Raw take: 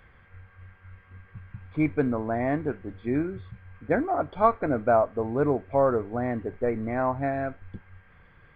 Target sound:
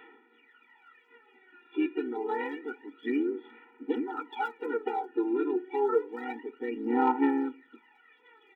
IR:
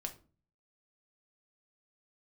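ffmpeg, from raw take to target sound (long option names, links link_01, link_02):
-filter_complex "[0:a]asplit=3[link_01][link_02][link_03];[link_02]asetrate=33038,aresample=44100,atempo=1.33484,volume=-11dB[link_04];[link_03]asetrate=55563,aresample=44100,atempo=0.793701,volume=-12dB[link_05];[link_01][link_04][link_05]amix=inputs=3:normalize=0,acompressor=threshold=-24dB:ratio=8,aemphasis=mode=production:type=75fm,aresample=8000,aeval=exprs='clip(val(0),-1,0.0841)':channel_layout=same,aresample=44100,aphaser=in_gain=1:out_gain=1:delay=2.9:decay=0.76:speed=0.28:type=sinusoidal,acontrast=47,asplit=2[link_06][link_07];[1:a]atrim=start_sample=2205[link_08];[link_07][link_08]afir=irnorm=-1:irlink=0,volume=-10.5dB[link_09];[link_06][link_09]amix=inputs=2:normalize=0,afftfilt=real='re*eq(mod(floor(b*sr/1024/250),2),1)':imag='im*eq(mod(floor(b*sr/1024/250),2),1)':win_size=1024:overlap=0.75,volume=-8.5dB"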